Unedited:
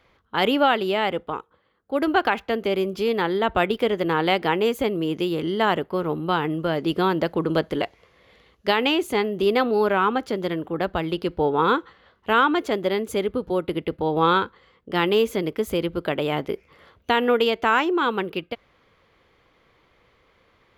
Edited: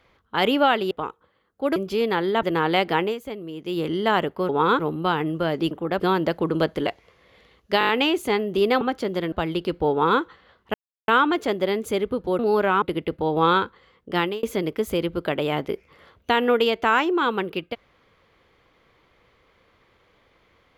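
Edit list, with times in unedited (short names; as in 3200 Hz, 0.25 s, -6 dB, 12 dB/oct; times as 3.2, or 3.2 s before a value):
0.91–1.21 cut
2.06–2.83 cut
3.5–3.97 cut
4.57–5.31 dip -10 dB, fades 0.12 s
8.74 stutter 0.02 s, 6 plays
9.66–10.09 move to 13.62
10.6–10.89 move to 6.95
11.48–11.78 copy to 6.03
12.31 insert silence 0.34 s
14.98–15.23 fade out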